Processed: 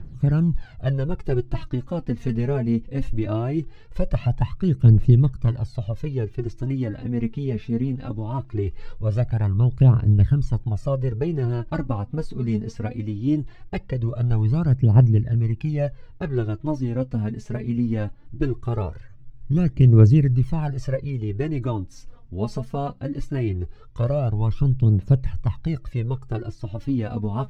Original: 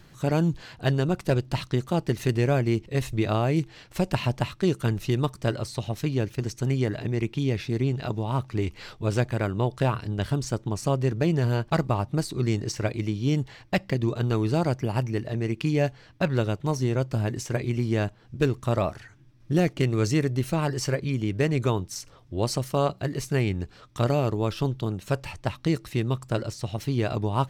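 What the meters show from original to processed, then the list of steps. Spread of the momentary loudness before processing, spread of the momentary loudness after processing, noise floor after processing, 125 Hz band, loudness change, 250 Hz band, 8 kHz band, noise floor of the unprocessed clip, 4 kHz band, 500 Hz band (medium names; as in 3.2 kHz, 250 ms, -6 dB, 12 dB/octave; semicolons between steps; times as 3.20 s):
6 LU, 12 LU, -43 dBFS, +6.5 dB, +4.0 dB, +2.5 dB, under -10 dB, -53 dBFS, under -10 dB, -2.0 dB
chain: phaser 0.2 Hz, delay 4.8 ms, feedback 69%; RIAA curve playback; trim -7.5 dB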